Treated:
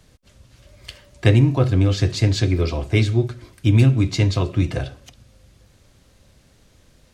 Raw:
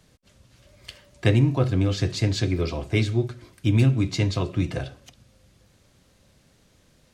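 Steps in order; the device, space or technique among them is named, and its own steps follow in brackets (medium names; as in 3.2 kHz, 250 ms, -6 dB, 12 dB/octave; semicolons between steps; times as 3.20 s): low shelf boost with a cut just above (bass shelf 82 Hz +7.5 dB; peaking EQ 170 Hz -3 dB 0.67 oct); trim +3.5 dB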